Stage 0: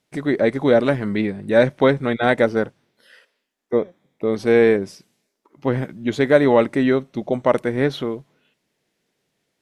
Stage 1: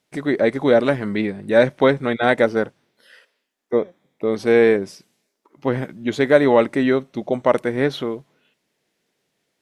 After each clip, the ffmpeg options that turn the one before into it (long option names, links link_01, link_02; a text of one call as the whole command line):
ffmpeg -i in.wav -af "lowshelf=frequency=160:gain=-6,volume=1dB" out.wav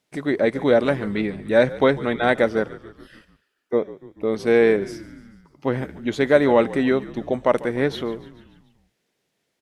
ffmpeg -i in.wav -filter_complex "[0:a]asplit=6[link_01][link_02][link_03][link_04][link_05][link_06];[link_02]adelay=145,afreqshift=-53,volume=-18dB[link_07];[link_03]adelay=290,afreqshift=-106,volume=-22.6dB[link_08];[link_04]adelay=435,afreqshift=-159,volume=-27.2dB[link_09];[link_05]adelay=580,afreqshift=-212,volume=-31.7dB[link_10];[link_06]adelay=725,afreqshift=-265,volume=-36.3dB[link_11];[link_01][link_07][link_08][link_09][link_10][link_11]amix=inputs=6:normalize=0,volume=-2dB" out.wav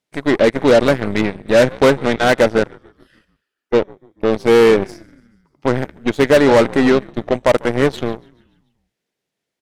ffmpeg -i in.wav -af "aeval=exprs='0.708*sin(PI/2*1.78*val(0)/0.708)':channel_layout=same,aeval=exprs='0.75*(cos(1*acos(clip(val(0)/0.75,-1,1)))-cos(1*PI/2))+0.0841*(cos(7*acos(clip(val(0)/0.75,-1,1)))-cos(7*PI/2))+0.0376*(cos(8*acos(clip(val(0)/0.75,-1,1)))-cos(8*PI/2))':channel_layout=same,volume=-1.5dB" out.wav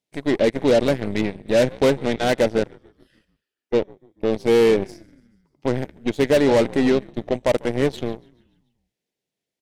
ffmpeg -i in.wav -af "equalizer=frequency=1300:width=1.4:gain=-8,volume=-4.5dB" out.wav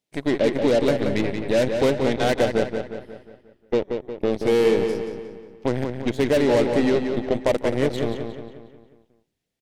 ffmpeg -i in.wav -filter_complex "[0:a]acompressor=threshold=-21dB:ratio=2,asplit=2[link_01][link_02];[link_02]adelay=179,lowpass=frequency=4900:poles=1,volume=-6dB,asplit=2[link_03][link_04];[link_04]adelay=179,lowpass=frequency=4900:poles=1,volume=0.5,asplit=2[link_05][link_06];[link_06]adelay=179,lowpass=frequency=4900:poles=1,volume=0.5,asplit=2[link_07][link_08];[link_08]adelay=179,lowpass=frequency=4900:poles=1,volume=0.5,asplit=2[link_09][link_10];[link_10]adelay=179,lowpass=frequency=4900:poles=1,volume=0.5,asplit=2[link_11][link_12];[link_12]adelay=179,lowpass=frequency=4900:poles=1,volume=0.5[link_13];[link_03][link_05][link_07][link_09][link_11][link_13]amix=inputs=6:normalize=0[link_14];[link_01][link_14]amix=inputs=2:normalize=0,volume=1.5dB" out.wav